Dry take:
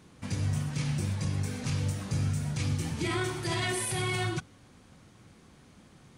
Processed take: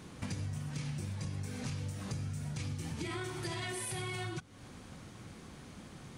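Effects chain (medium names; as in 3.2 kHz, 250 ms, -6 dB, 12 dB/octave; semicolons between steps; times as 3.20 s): compression 8:1, threshold -42 dBFS, peak gain reduction 16 dB; trim +5.5 dB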